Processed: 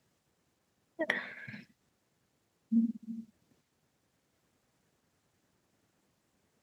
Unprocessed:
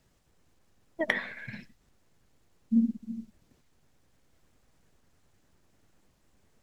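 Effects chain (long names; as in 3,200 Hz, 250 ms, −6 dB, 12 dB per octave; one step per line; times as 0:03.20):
high-pass filter 110 Hz 12 dB per octave
level −4 dB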